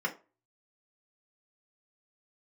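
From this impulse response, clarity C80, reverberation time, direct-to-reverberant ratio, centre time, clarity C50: 21.5 dB, 0.30 s, -2.0 dB, 9 ms, 15.5 dB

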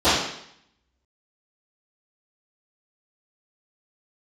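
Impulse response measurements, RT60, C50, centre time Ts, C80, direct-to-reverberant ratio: 0.70 s, 0.5 dB, 65 ms, 4.5 dB, -19.0 dB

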